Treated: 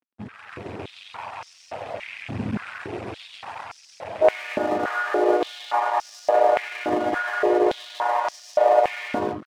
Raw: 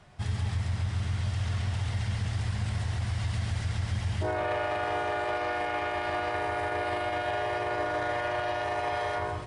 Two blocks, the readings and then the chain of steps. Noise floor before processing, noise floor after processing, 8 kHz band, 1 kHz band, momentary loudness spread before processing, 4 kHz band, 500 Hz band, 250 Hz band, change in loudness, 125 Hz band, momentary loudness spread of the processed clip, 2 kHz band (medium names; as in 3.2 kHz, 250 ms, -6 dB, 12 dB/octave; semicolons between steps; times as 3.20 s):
-34 dBFS, -52 dBFS, no reading, +7.0 dB, 2 LU, +1.5 dB, +10.0 dB, +9.5 dB, +7.5 dB, -11.5 dB, 19 LU, +3.5 dB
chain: rattle on loud lows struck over -29 dBFS, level -28 dBFS; tilt shelf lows +9 dB, about 1.5 kHz; on a send: feedback echo behind a high-pass 169 ms, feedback 67%, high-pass 3.3 kHz, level -3 dB; on the sum: reverb removal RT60 0.65 s; treble shelf 3.2 kHz -7.5 dB; crossover distortion -40.5 dBFS; level rider gain up to 11.5 dB; step-sequenced high-pass 3.5 Hz 240–5500 Hz; trim -6.5 dB